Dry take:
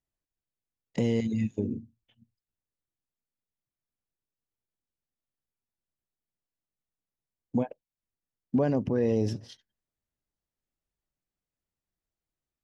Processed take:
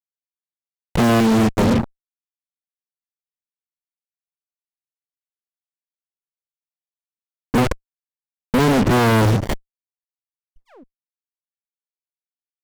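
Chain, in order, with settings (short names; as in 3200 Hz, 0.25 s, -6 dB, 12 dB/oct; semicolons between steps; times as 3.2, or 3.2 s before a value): fuzz box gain 48 dB, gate -46 dBFS; painted sound fall, 10.56–10.84, 220–3100 Hz -42 dBFS; running maximum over 33 samples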